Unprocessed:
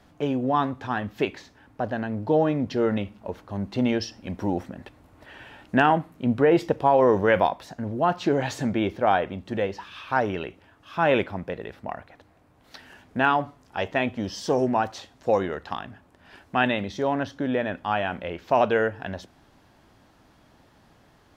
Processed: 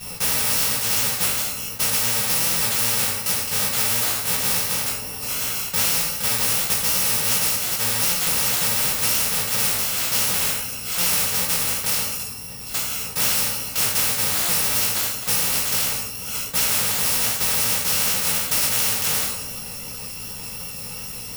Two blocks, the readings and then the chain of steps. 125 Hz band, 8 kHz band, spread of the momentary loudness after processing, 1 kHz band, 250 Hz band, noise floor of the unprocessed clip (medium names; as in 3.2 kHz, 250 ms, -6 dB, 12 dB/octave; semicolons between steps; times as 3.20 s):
-1.5 dB, +30.0 dB, 9 LU, -6.0 dB, -10.0 dB, -58 dBFS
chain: bit-reversed sample order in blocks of 128 samples; in parallel at -9 dB: word length cut 6-bit, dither none; on the sum: compression, threshold -22 dBFS, peak gain reduction 10.5 dB; two-slope reverb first 0.36 s, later 1.6 s, from -25 dB, DRR -8.5 dB; chorus 2.7 Hz, delay 15 ms, depth 3.5 ms; spectrum-flattening compressor 4:1